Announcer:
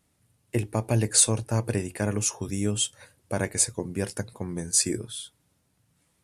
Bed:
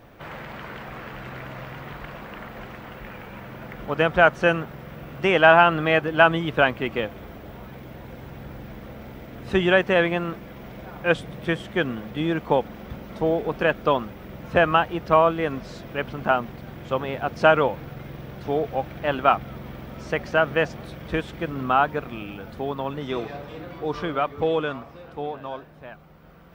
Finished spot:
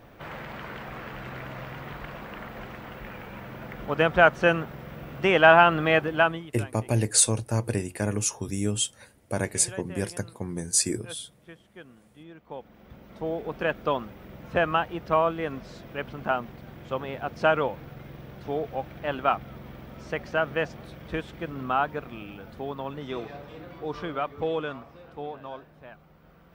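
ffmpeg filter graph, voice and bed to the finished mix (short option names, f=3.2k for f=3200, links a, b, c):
-filter_complex "[0:a]adelay=6000,volume=-0.5dB[a];[1:a]volume=16dB,afade=t=out:st=6.02:d=0.5:silence=0.0841395,afade=t=in:st=12.43:d=1.28:silence=0.133352[b];[a][b]amix=inputs=2:normalize=0"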